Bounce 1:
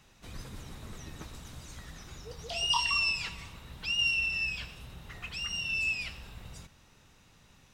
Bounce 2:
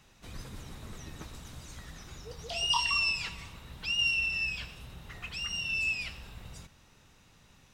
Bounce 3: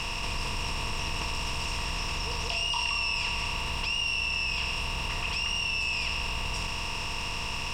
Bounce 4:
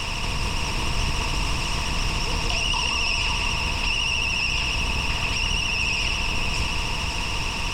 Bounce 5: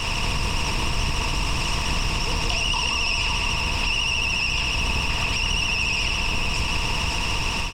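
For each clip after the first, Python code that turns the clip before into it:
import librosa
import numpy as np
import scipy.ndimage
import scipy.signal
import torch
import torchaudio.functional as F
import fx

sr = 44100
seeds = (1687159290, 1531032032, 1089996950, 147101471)

y1 = x
y2 = fx.bin_compress(y1, sr, power=0.4)
y2 = fx.low_shelf(y2, sr, hz=78.0, db=10.0)
y2 = fx.env_flatten(y2, sr, amount_pct=70)
y2 = F.gain(torch.from_numpy(y2), -6.0).numpy()
y3 = fx.octave_divider(y2, sr, octaves=1, level_db=2.0)
y3 = fx.vibrato(y3, sr, rate_hz=14.0, depth_cents=65.0)
y3 = y3 + 10.0 ** (-6.0 / 20.0) * np.pad(y3, (int(559 * sr / 1000.0), 0))[:len(y3)]
y3 = F.gain(torch.from_numpy(y3), 4.5).numpy()
y4 = fx.fade_out_tail(y3, sr, length_s=0.61)
y4 = fx.recorder_agc(y4, sr, target_db=-15.0, rise_db_per_s=54.0, max_gain_db=30)
y4 = fx.quant_float(y4, sr, bits=6)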